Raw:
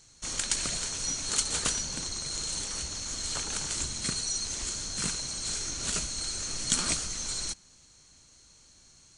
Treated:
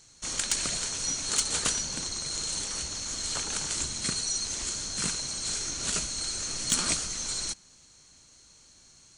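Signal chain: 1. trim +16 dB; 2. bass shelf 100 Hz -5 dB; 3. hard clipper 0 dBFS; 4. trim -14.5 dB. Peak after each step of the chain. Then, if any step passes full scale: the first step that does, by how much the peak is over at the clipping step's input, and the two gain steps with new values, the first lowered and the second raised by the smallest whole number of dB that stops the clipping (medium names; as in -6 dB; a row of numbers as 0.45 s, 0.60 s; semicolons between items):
+10.0 dBFS, +10.0 dBFS, 0.0 dBFS, -14.5 dBFS; step 1, 10.0 dB; step 1 +6 dB, step 4 -4.5 dB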